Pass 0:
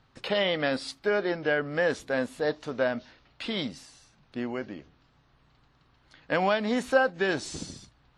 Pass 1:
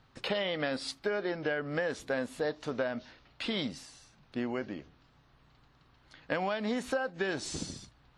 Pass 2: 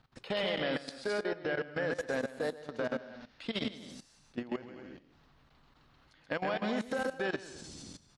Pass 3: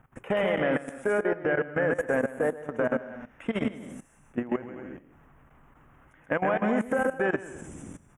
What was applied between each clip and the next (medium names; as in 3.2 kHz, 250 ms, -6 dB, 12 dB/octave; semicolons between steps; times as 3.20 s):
compression 10:1, threshold -28 dBFS, peak gain reduction 12.5 dB
bouncing-ball echo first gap 130 ms, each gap 0.65×, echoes 5; level held to a coarse grid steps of 16 dB
Butterworth band-stop 4.4 kHz, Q 0.7; trim +8 dB